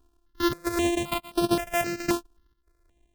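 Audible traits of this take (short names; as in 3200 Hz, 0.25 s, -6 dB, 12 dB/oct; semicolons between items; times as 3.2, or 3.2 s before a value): a buzz of ramps at a fixed pitch in blocks of 128 samples; chopped level 1.5 Hz, depth 60%, duty 80%; notches that jump at a steady rate 3.8 Hz 560–7000 Hz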